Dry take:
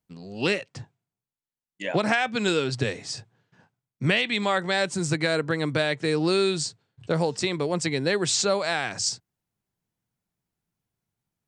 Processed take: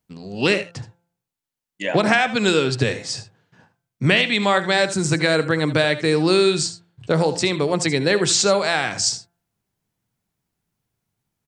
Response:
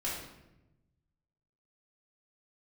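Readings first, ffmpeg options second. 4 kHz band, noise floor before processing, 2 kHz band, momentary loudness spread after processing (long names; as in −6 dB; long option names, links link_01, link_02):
+6.0 dB, below −85 dBFS, +6.0 dB, 11 LU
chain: -filter_complex "[0:a]bandreject=frequency=172.1:width_type=h:width=4,bandreject=frequency=344.2:width_type=h:width=4,bandreject=frequency=516.3:width_type=h:width=4,bandreject=frequency=688.4:width_type=h:width=4,bandreject=frequency=860.5:width_type=h:width=4,bandreject=frequency=1032.6:width_type=h:width=4,bandreject=frequency=1204.7:width_type=h:width=4,bandreject=frequency=1376.8:width_type=h:width=4,bandreject=frequency=1548.9:width_type=h:width=4,bandreject=frequency=1721:width_type=h:width=4,asplit=2[link_01][link_02];[link_02]aecho=0:1:70|80:0.133|0.168[link_03];[link_01][link_03]amix=inputs=2:normalize=0,volume=6dB"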